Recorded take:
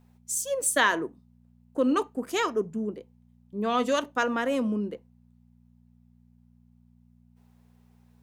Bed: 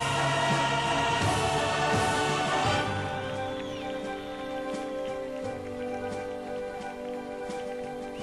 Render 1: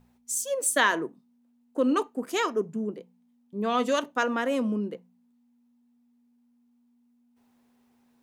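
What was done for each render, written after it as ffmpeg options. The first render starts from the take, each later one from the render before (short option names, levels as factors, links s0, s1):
-af "bandreject=f=60:t=h:w=4,bandreject=f=120:t=h:w=4,bandreject=f=180:t=h:w=4"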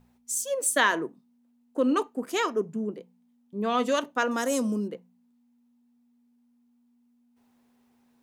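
-filter_complex "[0:a]asettb=1/sr,asplit=3[s0][s1][s2];[s0]atrim=end=4.314[s3];[s1]atrim=start=4.31:end=4.88,asetpts=PTS-STARTPTS,afade=t=in:d=0.004:c=qsin,afade=t=out:st=0.566:d=0.004:c=qsin,highshelf=f=4100:t=q:w=1.5:g=14[s4];[s2]atrim=start=4.876[s5];[s3][s4]acrossfade=d=0.004:c1=hsin:c2=qsin[s6];[s6][s5]acrossfade=d=0.004:c1=qsin:c2=hsin"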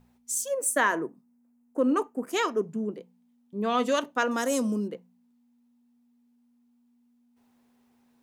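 -filter_complex "[0:a]asettb=1/sr,asplit=3[s0][s1][s2];[s0]atrim=end=0.484[s3];[s1]atrim=start=0.48:end=2.33,asetpts=PTS-STARTPTS,afade=t=in:d=0.004:c=qsin,afade=t=out:st=1.846:d=0.004:c=qsin,equalizer=f=3700:t=o:w=0.91:g=-13[s4];[s2]atrim=start=2.326[s5];[s3][s4]acrossfade=d=0.004:c1=hsin:c2=qsin[s6];[s6][s5]acrossfade=d=0.004:c1=qsin:c2=hsin"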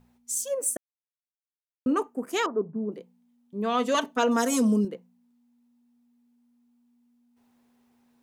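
-filter_complex "[0:a]asettb=1/sr,asplit=3[s0][s1][s2];[s0]atrim=end=2.464[s3];[s1]atrim=start=2.46:end=2.92,asetpts=PTS-STARTPTS,afade=t=in:d=0.004:c=qsin,afade=t=out:st=0.456:d=0.004:c=qsin,lowpass=f=1200:w=0.5412,lowpass=f=1200:w=1.3066[s4];[s2]atrim=start=2.916[s5];[s3][s4]acrossfade=d=0.004:c1=hsin:c2=qsin[s6];[s6][s5]acrossfade=d=0.004:c1=qsin:c2=hsin,asettb=1/sr,asplit=3[s7][s8][s9];[s7]atrim=end=3.944[s10];[s8]atrim=start=3.94:end=4.85,asetpts=PTS-STARTPTS,afade=t=in:d=0.004:c=qsin,afade=t=out:st=0.906:d=0.004:c=qsin,aecho=1:1:4.5:1,atrim=end_sample=40131[s11];[s9]atrim=start=4.846[s12];[s10][s11]acrossfade=d=0.004:c1=hsin:c2=qsin[s13];[s13][s12]acrossfade=d=0.004:c1=qsin:c2=hsin,asplit=3[s14][s15][s16];[s14]atrim=end=0.77,asetpts=PTS-STARTPTS,afade=t=out:st=0.766:d=0.004:c=hsin[s17];[s15]atrim=start=0.77:end=1.86,asetpts=PTS-STARTPTS,volume=0[s18];[s16]atrim=start=1.86,asetpts=PTS-STARTPTS,afade=t=in:d=0.004:c=hsin[s19];[s17][s18][s19]concat=n=3:v=0:a=1"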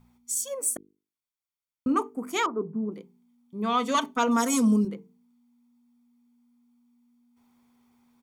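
-af "bandreject=f=50:t=h:w=6,bandreject=f=100:t=h:w=6,bandreject=f=150:t=h:w=6,bandreject=f=200:t=h:w=6,bandreject=f=250:t=h:w=6,bandreject=f=300:t=h:w=6,bandreject=f=350:t=h:w=6,bandreject=f=400:t=h:w=6,bandreject=f=450:t=h:w=6,aecho=1:1:0.9:0.46"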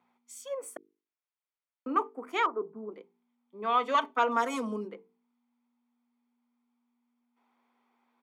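-filter_complex "[0:a]highpass=170,acrossover=split=350 3200:gain=0.0794 1 0.1[s0][s1][s2];[s0][s1][s2]amix=inputs=3:normalize=0"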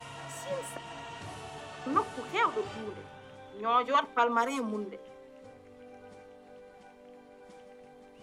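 -filter_complex "[1:a]volume=0.141[s0];[0:a][s0]amix=inputs=2:normalize=0"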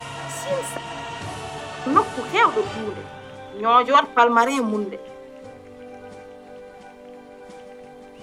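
-af "volume=3.55"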